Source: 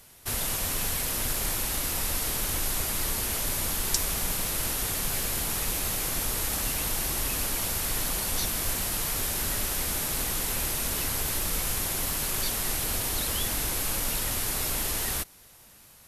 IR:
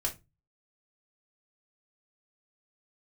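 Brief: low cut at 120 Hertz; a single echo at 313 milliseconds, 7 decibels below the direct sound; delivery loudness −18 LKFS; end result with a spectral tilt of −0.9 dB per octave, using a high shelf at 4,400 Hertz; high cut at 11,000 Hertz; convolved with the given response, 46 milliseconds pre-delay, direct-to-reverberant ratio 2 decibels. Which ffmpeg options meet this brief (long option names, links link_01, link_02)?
-filter_complex "[0:a]highpass=120,lowpass=11000,highshelf=frequency=4400:gain=5.5,aecho=1:1:313:0.447,asplit=2[link_01][link_02];[1:a]atrim=start_sample=2205,adelay=46[link_03];[link_02][link_03]afir=irnorm=-1:irlink=0,volume=-5.5dB[link_04];[link_01][link_04]amix=inputs=2:normalize=0,volume=5dB"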